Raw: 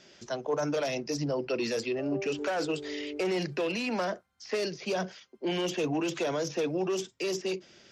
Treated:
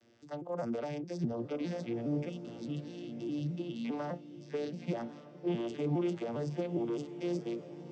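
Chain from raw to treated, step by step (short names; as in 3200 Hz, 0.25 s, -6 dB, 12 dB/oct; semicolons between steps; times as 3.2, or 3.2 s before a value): arpeggiated vocoder major triad, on A#2, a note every 0.205 s; spectral gain 2.29–3.85, 350–2600 Hz -18 dB; diffused feedback echo 1.127 s, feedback 40%, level -13 dB; gain -4 dB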